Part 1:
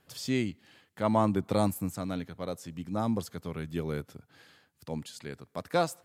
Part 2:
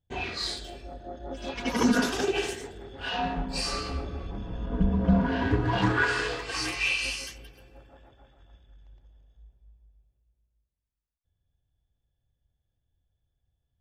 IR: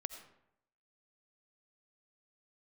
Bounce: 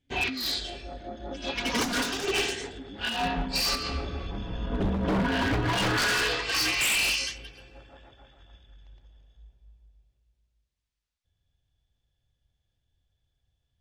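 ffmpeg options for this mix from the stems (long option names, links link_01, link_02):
-filter_complex "[0:a]alimiter=limit=-23.5dB:level=0:latency=1:release=334,asplit=3[link_01][link_02][link_03];[link_01]bandpass=frequency=270:width_type=q:width=8,volume=0dB[link_04];[link_02]bandpass=frequency=2290:width_type=q:width=8,volume=-6dB[link_05];[link_03]bandpass=frequency=3010:width_type=q:width=8,volume=-9dB[link_06];[link_04][link_05][link_06]amix=inputs=3:normalize=0,volume=-0.5dB,asplit=2[link_07][link_08];[1:a]lowpass=8600,equalizer=frequency=3600:width=0.51:gain=8,aeval=exprs='0.0891*(abs(mod(val(0)/0.0891+3,4)-2)-1)':channel_layout=same,volume=1dB[link_09];[link_08]apad=whole_len=608716[link_10];[link_09][link_10]sidechaincompress=threshold=-46dB:ratio=5:attack=16:release=158[link_11];[link_07][link_11]amix=inputs=2:normalize=0"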